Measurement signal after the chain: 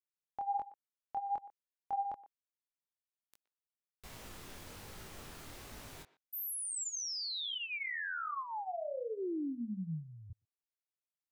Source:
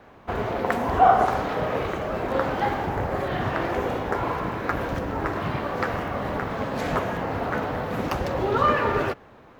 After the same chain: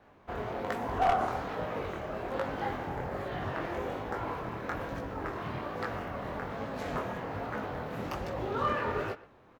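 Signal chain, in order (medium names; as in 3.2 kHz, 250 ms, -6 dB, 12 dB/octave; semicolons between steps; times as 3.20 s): one-sided wavefolder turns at -10.5 dBFS; chorus 1.2 Hz, delay 18 ms, depth 7.8 ms; speakerphone echo 120 ms, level -17 dB; trim -6.5 dB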